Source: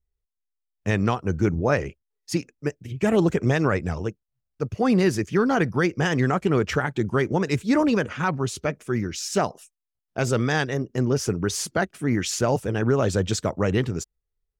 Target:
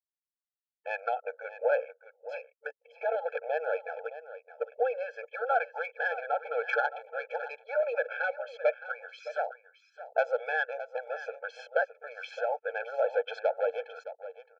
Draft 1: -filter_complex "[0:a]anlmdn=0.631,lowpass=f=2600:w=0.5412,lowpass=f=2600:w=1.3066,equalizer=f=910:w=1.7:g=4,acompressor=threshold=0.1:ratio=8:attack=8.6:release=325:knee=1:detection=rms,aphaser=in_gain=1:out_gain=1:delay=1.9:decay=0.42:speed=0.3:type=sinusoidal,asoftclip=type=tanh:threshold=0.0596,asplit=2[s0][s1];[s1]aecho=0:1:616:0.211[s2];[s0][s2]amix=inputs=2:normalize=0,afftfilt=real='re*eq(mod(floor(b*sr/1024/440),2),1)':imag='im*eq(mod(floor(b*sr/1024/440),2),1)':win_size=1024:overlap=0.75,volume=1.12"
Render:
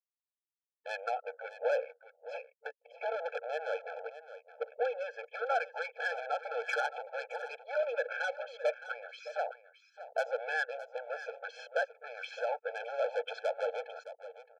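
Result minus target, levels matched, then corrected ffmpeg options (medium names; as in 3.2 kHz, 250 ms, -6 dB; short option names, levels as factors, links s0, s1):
saturation: distortion +11 dB
-filter_complex "[0:a]anlmdn=0.631,lowpass=f=2600:w=0.5412,lowpass=f=2600:w=1.3066,equalizer=f=910:w=1.7:g=4,acompressor=threshold=0.1:ratio=8:attack=8.6:release=325:knee=1:detection=rms,aphaser=in_gain=1:out_gain=1:delay=1.9:decay=0.42:speed=0.3:type=sinusoidal,asoftclip=type=tanh:threshold=0.2,asplit=2[s0][s1];[s1]aecho=0:1:616:0.211[s2];[s0][s2]amix=inputs=2:normalize=0,afftfilt=real='re*eq(mod(floor(b*sr/1024/440),2),1)':imag='im*eq(mod(floor(b*sr/1024/440),2),1)':win_size=1024:overlap=0.75,volume=1.12"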